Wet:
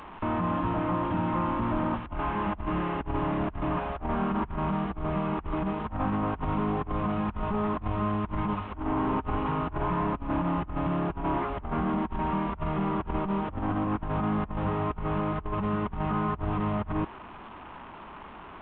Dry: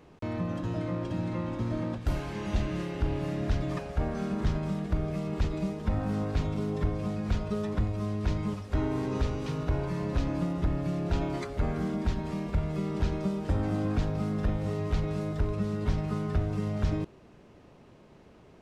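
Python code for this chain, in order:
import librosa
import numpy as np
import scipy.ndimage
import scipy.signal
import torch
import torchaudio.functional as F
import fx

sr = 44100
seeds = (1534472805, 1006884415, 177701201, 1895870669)

y = fx.delta_mod(x, sr, bps=16000, step_db=-46.5)
y = fx.graphic_eq_10(y, sr, hz=(125, 500, 1000, 2000), db=(-11, -9, 11, -5))
y = fx.over_compress(y, sr, threshold_db=-35.0, ratio=-0.5)
y = F.gain(torch.from_numpy(y), 6.5).numpy()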